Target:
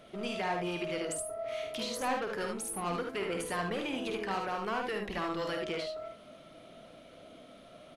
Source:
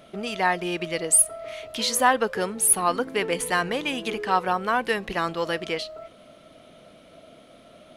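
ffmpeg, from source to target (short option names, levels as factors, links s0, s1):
-filter_complex "[0:a]highshelf=f=9400:g=-4.5,acrossover=split=1200[s0][s1];[s0]asoftclip=type=tanh:threshold=0.0376[s2];[s1]acompressor=threshold=0.0178:ratio=10[s3];[s2][s3]amix=inputs=2:normalize=0,flanger=delay=1.9:depth=8.6:regen=78:speed=0.42:shape=triangular,aecho=1:1:51|75:0.447|0.562"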